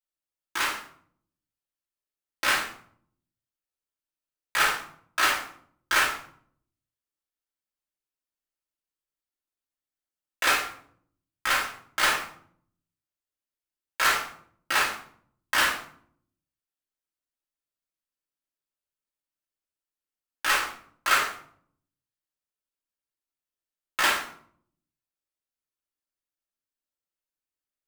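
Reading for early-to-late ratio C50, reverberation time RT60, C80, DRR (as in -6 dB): 5.0 dB, 0.60 s, 10.0 dB, -6.0 dB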